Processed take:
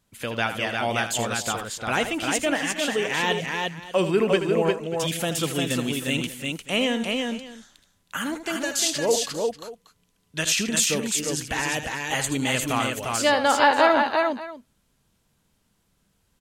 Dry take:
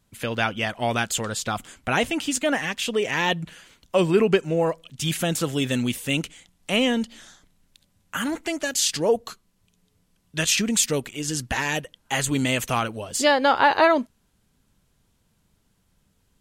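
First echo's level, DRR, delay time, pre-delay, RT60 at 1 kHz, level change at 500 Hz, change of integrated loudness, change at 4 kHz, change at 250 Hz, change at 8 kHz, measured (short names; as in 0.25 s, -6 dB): -10.0 dB, none, 79 ms, none, none, -0.5 dB, -0.5 dB, +0.5 dB, -1.5 dB, +0.5 dB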